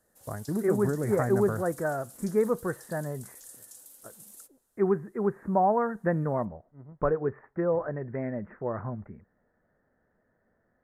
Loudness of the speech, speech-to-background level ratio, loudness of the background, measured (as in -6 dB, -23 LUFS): -29.0 LUFS, 18.5 dB, -47.5 LUFS